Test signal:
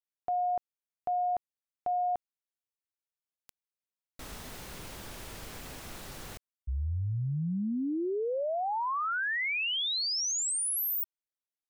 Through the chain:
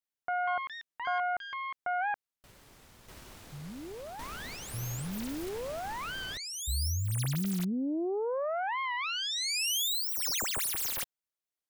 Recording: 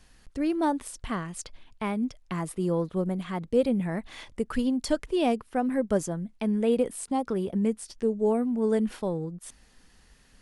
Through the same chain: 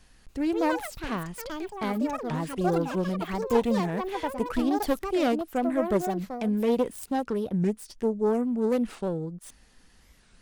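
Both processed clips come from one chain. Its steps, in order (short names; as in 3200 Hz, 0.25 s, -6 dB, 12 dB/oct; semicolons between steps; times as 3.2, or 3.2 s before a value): self-modulated delay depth 0.23 ms; echoes that change speed 0.286 s, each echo +7 st, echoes 2, each echo -6 dB; record warp 45 rpm, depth 250 cents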